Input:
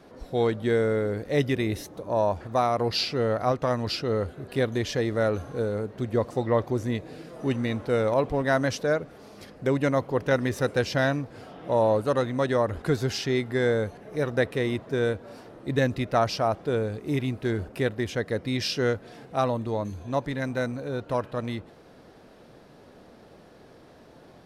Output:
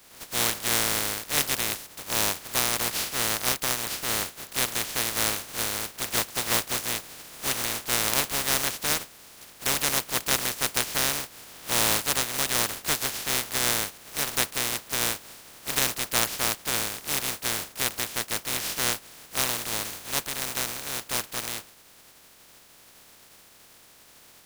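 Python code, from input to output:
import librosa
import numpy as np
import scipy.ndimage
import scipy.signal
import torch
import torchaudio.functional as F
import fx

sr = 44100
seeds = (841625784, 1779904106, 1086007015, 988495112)

y = fx.spec_flatten(x, sr, power=0.13)
y = y * 10.0 ** (-1.5 / 20.0)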